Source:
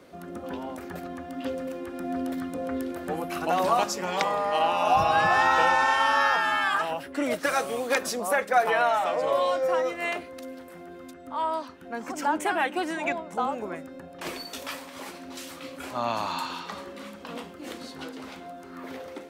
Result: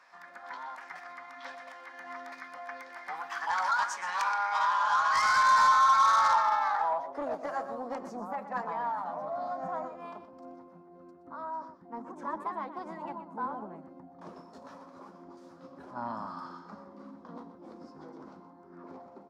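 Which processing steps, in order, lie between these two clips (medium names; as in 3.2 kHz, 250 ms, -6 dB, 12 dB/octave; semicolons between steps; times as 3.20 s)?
band-pass sweep 1.7 kHz -> 210 Hz, 5.19–8.18 s; formant shift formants +3 st; delay 123 ms -12 dB; saturation -28.5 dBFS, distortion -9 dB; FFT filter 210 Hz 0 dB, 380 Hz -6 dB, 1 kHz +12 dB, 2.8 kHz -5 dB, 5.2 kHz +11 dB, 12 kHz +3 dB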